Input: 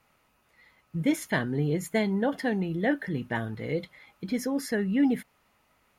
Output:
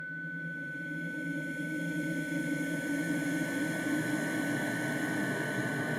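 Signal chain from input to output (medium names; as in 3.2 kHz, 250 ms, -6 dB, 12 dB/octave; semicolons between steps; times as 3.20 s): Paulstretch 8.2×, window 1.00 s, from 0.69 s; Chebyshev shaper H 6 -38 dB, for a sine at -15.5 dBFS; whistle 1.5 kHz -32 dBFS; trim -5.5 dB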